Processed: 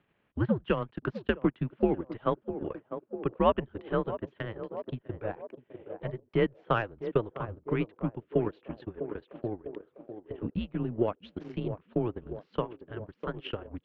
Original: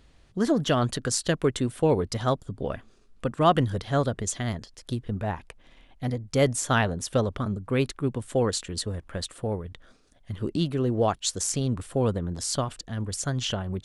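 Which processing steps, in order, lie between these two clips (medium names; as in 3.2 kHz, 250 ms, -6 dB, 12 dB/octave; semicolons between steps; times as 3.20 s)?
mistuned SSB -110 Hz 210–3000 Hz; band-passed feedback delay 650 ms, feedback 74%, band-pass 450 Hz, level -8 dB; transient shaper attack +7 dB, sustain -12 dB; trim -7 dB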